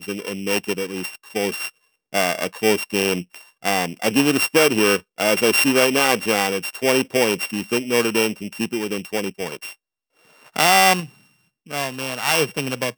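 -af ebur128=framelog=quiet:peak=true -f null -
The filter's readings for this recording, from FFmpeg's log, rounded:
Integrated loudness:
  I:         -19.8 LUFS
  Threshold: -30.4 LUFS
Loudness range:
  LRA:         5.6 LU
  Threshold: -40.0 LUFS
  LRA low:   -23.2 LUFS
  LRA high:  -17.6 LUFS
True peak:
  Peak:       -1.4 dBFS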